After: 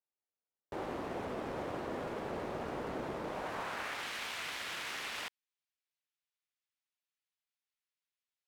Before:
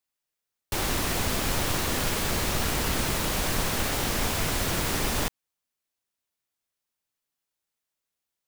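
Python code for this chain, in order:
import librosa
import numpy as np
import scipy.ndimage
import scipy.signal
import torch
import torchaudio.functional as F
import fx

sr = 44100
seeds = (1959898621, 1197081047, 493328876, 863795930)

y = fx.tracing_dist(x, sr, depth_ms=0.27)
y = fx.filter_sweep_bandpass(y, sr, from_hz=510.0, to_hz=2600.0, start_s=3.23, end_s=4.15, q=0.91)
y = y * librosa.db_to_amplitude(-5.0)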